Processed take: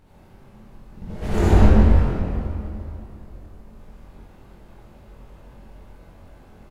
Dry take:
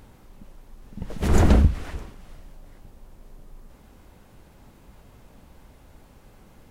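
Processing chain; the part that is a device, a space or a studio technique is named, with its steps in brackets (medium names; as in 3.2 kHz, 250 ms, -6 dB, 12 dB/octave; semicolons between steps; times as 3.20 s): doubling 23 ms -3 dB; swimming-pool hall (reverberation RT60 2.7 s, pre-delay 52 ms, DRR -10 dB; treble shelf 4.1 kHz -6 dB); trim -8 dB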